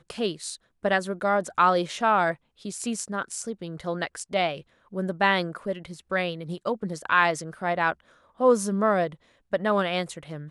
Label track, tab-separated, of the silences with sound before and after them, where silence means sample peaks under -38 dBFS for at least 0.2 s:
0.560000	0.840000	silence
2.340000	2.650000	silence
4.610000	4.930000	silence
7.930000	8.400000	silence
9.140000	9.530000	silence